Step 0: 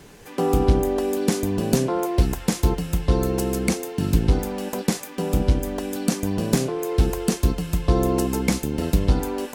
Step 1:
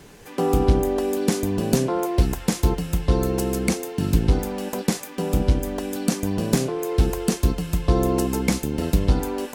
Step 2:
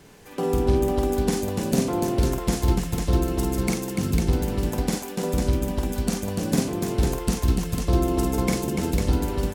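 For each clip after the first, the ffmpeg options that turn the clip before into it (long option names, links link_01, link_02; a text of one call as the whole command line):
ffmpeg -i in.wav -af anull out.wav
ffmpeg -i in.wav -af "aecho=1:1:49|291|499:0.631|0.531|0.596,volume=-4.5dB" out.wav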